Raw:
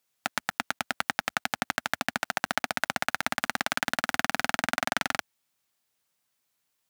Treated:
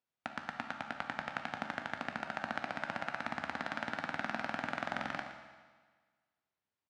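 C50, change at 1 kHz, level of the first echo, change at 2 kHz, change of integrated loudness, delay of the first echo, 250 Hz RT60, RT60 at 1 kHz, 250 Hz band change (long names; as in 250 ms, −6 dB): 5.5 dB, −7.5 dB, −13.5 dB, −10.0 dB, −9.5 dB, 117 ms, 1.5 s, 1.5 s, −5.5 dB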